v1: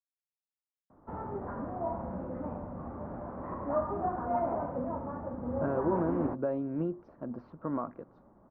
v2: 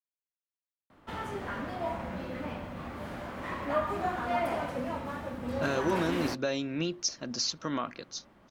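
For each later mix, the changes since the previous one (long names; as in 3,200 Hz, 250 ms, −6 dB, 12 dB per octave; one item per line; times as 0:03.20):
master: remove low-pass filter 1,100 Hz 24 dB per octave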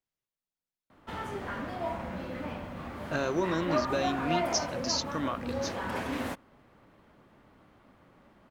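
speech: entry −2.50 s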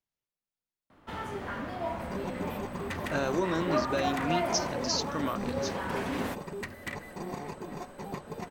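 second sound: unmuted
reverb: on, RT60 1.5 s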